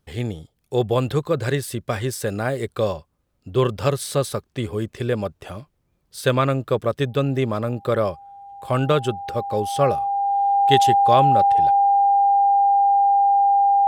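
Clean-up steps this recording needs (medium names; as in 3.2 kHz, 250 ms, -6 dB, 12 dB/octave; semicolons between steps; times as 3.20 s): band-stop 800 Hz, Q 30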